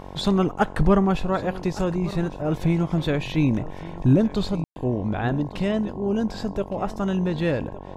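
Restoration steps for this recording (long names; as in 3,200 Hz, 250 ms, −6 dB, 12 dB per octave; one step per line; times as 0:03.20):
hum removal 47 Hz, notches 23
ambience match 0:04.64–0:04.76
echo removal 1,161 ms −17.5 dB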